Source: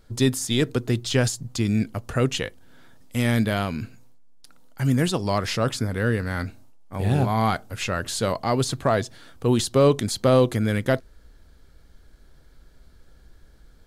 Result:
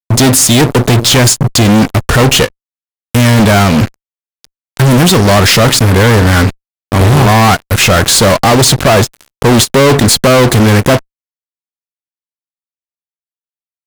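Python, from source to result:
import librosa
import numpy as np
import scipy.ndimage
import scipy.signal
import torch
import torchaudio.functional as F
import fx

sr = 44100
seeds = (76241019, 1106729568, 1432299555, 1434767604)

y = fx.fuzz(x, sr, gain_db=38.0, gate_db=-38.0)
y = fx.end_taper(y, sr, db_per_s=570.0)
y = y * librosa.db_to_amplitude(8.5)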